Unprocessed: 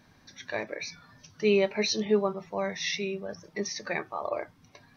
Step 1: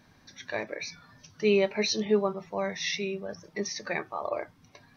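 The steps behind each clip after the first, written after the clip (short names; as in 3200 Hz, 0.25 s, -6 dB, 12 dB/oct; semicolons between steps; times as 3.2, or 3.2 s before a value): nothing audible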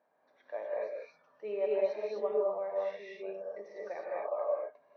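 ladder band-pass 670 Hz, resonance 55%; non-linear reverb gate 0.28 s rising, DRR -4 dB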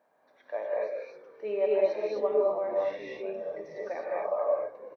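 frequency-shifting echo 0.335 s, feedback 54%, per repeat -67 Hz, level -19 dB; gain +5 dB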